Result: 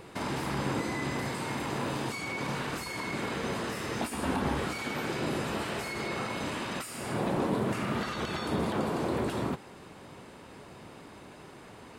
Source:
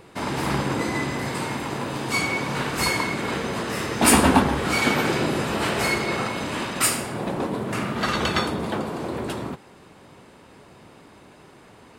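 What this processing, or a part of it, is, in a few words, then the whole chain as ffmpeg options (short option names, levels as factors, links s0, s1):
de-esser from a sidechain: -filter_complex "[0:a]asplit=2[s0][s1];[s1]highpass=f=5200:p=1,apad=whole_len=528626[s2];[s0][s2]sidechaincompress=threshold=0.01:ratio=8:attack=0.5:release=53"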